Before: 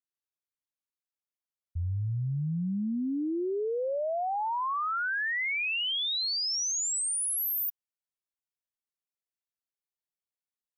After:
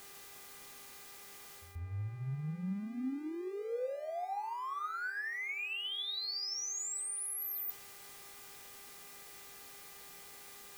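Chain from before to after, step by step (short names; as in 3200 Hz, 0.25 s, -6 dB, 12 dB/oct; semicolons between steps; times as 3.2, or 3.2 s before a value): zero-crossing step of -43 dBFS; dynamic EQ 4300 Hz, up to +5 dB, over -46 dBFS, Q 1.3; reverse; compressor 6:1, threshold -40 dBFS, peak gain reduction 14.5 dB; reverse; buzz 400 Hz, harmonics 6, -60 dBFS -2 dB/oct; pre-echo 0.136 s -16 dB; reverb RT60 0.35 s, pre-delay 3 ms, DRR 8 dB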